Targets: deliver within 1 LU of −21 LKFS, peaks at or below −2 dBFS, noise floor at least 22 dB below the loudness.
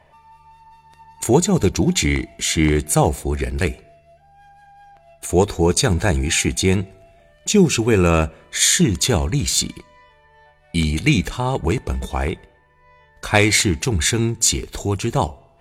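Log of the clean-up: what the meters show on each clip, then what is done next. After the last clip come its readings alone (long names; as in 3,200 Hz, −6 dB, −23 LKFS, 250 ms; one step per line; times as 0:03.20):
number of dropouts 1; longest dropout 3.2 ms; integrated loudness −18.5 LKFS; sample peak −1.5 dBFS; target loudness −21.0 LKFS
→ repair the gap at 0:14.63, 3.2 ms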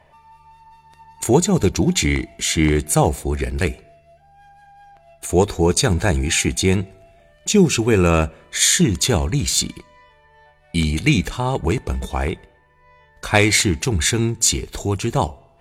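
number of dropouts 0; integrated loudness −18.5 LKFS; sample peak −1.5 dBFS; target loudness −21.0 LKFS
→ level −2.5 dB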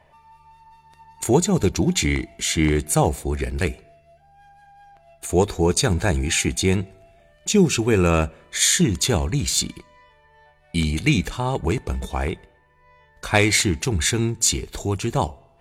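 integrated loudness −21.0 LKFS; sample peak −4.0 dBFS; background noise floor −57 dBFS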